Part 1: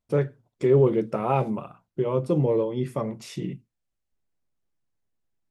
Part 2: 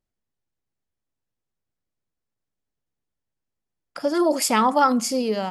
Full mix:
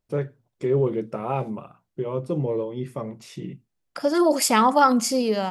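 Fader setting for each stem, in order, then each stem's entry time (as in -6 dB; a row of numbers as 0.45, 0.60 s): -3.0, +1.0 dB; 0.00, 0.00 s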